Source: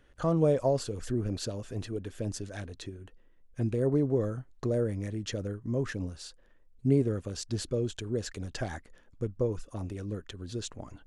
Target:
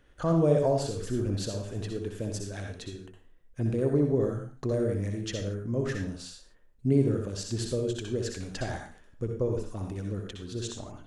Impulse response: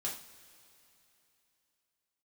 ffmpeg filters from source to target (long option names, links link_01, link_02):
-filter_complex "[0:a]asplit=2[link_01][link_02];[1:a]atrim=start_sample=2205,afade=type=out:start_time=0.23:duration=0.01,atrim=end_sample=10584,adelay=61[link_03];[link_02][link_03]afir=irnorm=-1:irlink=0,volume=-4dB[link_04];[link_01][link_04]amix=inputs=2:normalize=0"